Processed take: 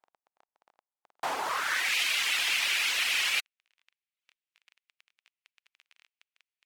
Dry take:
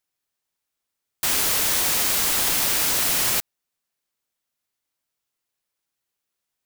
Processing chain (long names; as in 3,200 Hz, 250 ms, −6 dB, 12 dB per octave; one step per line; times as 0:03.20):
surface crackle 15 per second −35 dBFS
band-pass filter sweep 810 Hz → 2,500 Hz, 0:01.40–0:01.98
reverb reduction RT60 0.71 s
level +7 dB